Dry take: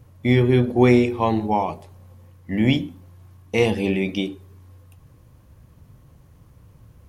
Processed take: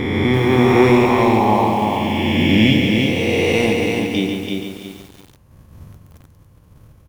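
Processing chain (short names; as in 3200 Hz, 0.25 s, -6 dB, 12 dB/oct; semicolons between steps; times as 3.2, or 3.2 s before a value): spectral swells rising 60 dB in 2.89 s; gate -43 dBFS, range -13 dB; notches 60/120/180 Hz; AGC gain up to 9.5 dB; in parallel at -11 dB: overloaded stage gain 8.5 dB; 3.73–4.14 on the sum: vocal tract filter i; on a send: feedback echo 0.142 s, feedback 53%, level -6.5 dB; on the sum: lo-fi delay 0.336 s, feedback 35%, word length 6-bit, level -4 dB; gain -3.5 dB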